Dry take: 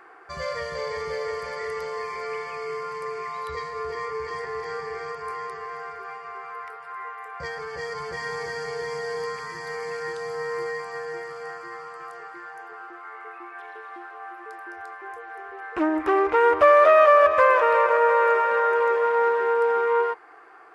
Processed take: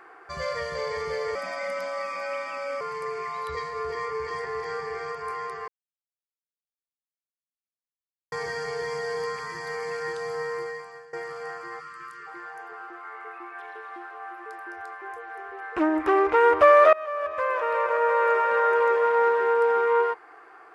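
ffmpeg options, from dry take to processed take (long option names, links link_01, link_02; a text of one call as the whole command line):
ffmpeg -i in.wav -filter_complex "[0:a]asettb=1/sr,asplit=3[link_01][link_02][link_03];[link_01]atrim=end=1.354[link_04];[link_02]atrim=start=1.35:end=2.81,asetpts=PTS-STARTPTS,afade=type=in:duration=0.004:curve=qsin,afade=type=out:start_time=1.456:duration=0.004:curve=qsin,afreqshift=120[link_05];[link_03]atrim=start=2.806[link_06];[link_04][link_05]acrossfade=duration=0.004:curve1=hsin:curve2=qsin[link_07];[link_07][link_06]acrossfade=duration=0.004:curve1=qsin:curve2=hsin,asplit=3[link_08][link_09][link_10];[link_08]afade=type=out:start_time=11.79:duration=0.02[link_11];[link_09]asuperstop=centerf=650:order=8:qfactor=0.97,afade=type=in:start_time=11.79:duration=0.02,afade=type=out:start_time=12.26:duration=0.02[link_12];[link_10]afade=type=in:start_time=12.26:duration=0.02[link_13];[link_11][link_12][link_13]amix=inputs=3:normalize=0,asplit=5[link_14][link_15][link_16][link_17][link_18];[link_14]atrim=end=5.68,asetpts=PTS-STARTPTS,afade=type=out:start_time=5.676:duration=0.004:curve=hsin[link_19];[link_15]atrim=start=5.68:end=8.32,asetpts=PTS-STARTPTS,volume=0[link_20];[link_16]atrim=start=8.32:end=11.13,asetpts=PTS-STARTPTS,afade=type=in:duration=0.004:curve=hsin,afade=type=out:start_time=2.05:duration=0.76:silence=0.105925[link_21];[link_17]atrim=start=11.13:end=16.93,asetpts=PTS-STARTPTS,afade=type=in:duration=0.004:curve=hsin:silence=0.105925,afade=type=out:start_time=5.796:duration=0.004:curve=hsin:silence=0.0668344[link_22];[link_18]atrim=start=16.93,asetpts=PTS-STARTPTS,afade=type=in:duration=1.76:silence=0.0668344[link_23];[link_19][link_20][link_21][link_22][link_23]concat=n=5:v=0:a=1" out.wav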